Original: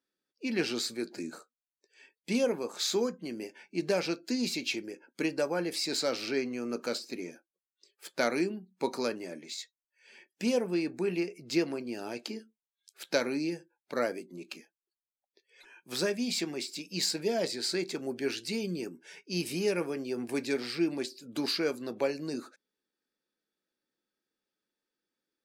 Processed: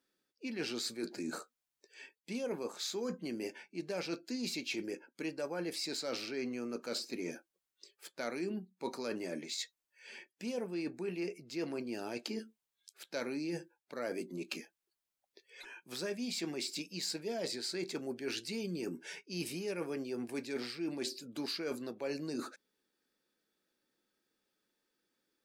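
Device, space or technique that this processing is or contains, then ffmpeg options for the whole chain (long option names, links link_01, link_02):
compression on the reversed sound: -af "areverse,acompressor=threshold=-42dB:ratio=6,areverse,volume=5.5dB"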